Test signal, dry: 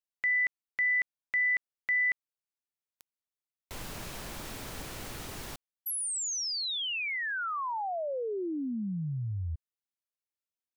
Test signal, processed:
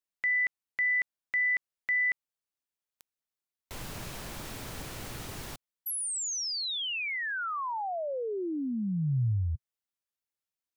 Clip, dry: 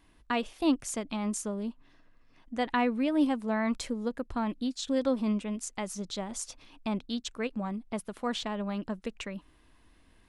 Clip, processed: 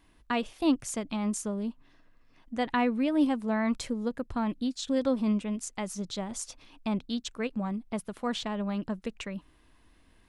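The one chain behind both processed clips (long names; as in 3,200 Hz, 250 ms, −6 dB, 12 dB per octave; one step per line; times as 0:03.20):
dynamic equaliser 120 Hz, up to +7 dB, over −50 dBFS, Q 1.3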